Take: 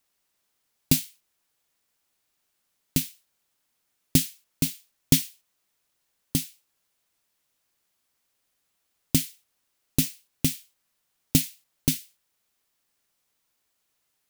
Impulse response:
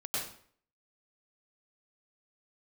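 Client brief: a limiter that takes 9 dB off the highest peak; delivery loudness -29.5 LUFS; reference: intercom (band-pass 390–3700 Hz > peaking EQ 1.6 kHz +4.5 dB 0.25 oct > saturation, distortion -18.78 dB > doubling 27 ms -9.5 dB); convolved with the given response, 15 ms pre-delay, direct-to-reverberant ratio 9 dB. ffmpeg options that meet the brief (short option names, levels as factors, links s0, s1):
-filter_complex "[0:a]alimiter=limit=0.282:level=0:latency=1,asplit=2[s0][s1];[1:a]atrim=start_sample=2205,adelay=15[s2];[s1][s2]afir=irnorm=-1:irlink=0,volume=0.224[s3];[s0][s3]amix=inputs=2:normalize=0,highpass=390,lowpass=3700,equalizer=f=1600:t=o:w=0.25:g=4.5,asoftclip=threshold=0.0531,asplit=2[s4][s5];[s5]adelay=27,volume=0.335[s6];[s4][s6]amix=inputs=2:normalize=0,volume=3.98"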